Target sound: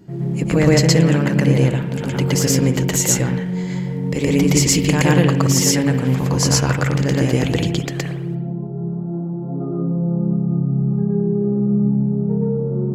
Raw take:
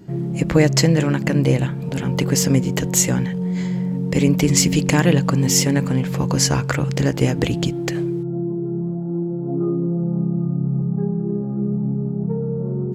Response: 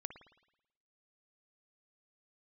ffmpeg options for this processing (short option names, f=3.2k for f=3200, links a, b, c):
-filter_complex "[0:a]asplit=2[a][b];[1:a]atrim=start_sample=2205,adelay=118[c];[b][c]afir=irnorm=-1:irlink=0,volume=6.5dB[d];[a][d]amix=inputs=2:normalize=0,volume=-3dB"